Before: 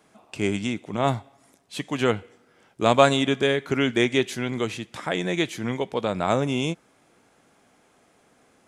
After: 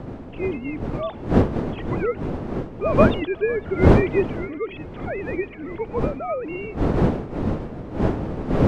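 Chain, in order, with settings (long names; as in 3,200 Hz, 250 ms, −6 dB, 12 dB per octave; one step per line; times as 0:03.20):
three sine waves on the formant tracks
wind on the microphone 350 Hz −21 dBFS
feedback echo with a swinging delay time 505 ms, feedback 66%, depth 55 cents, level −23.5 dB
level −2.5 dB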